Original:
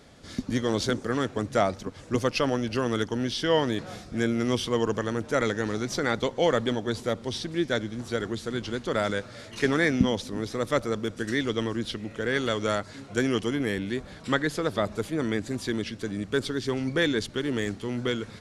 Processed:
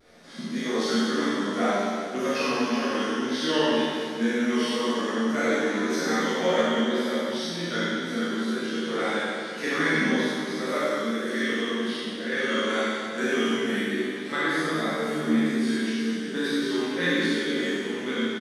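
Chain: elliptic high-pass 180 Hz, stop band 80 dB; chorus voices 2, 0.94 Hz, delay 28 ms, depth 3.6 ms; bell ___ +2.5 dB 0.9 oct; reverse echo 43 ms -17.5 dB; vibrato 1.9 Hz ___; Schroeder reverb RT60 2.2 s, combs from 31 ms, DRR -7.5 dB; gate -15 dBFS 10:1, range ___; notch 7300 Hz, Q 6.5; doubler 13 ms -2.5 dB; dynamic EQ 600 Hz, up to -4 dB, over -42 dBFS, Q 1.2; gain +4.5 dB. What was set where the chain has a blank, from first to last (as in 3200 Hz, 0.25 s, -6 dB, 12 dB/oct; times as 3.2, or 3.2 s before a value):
1700 Hz, 82 cents, -8 dB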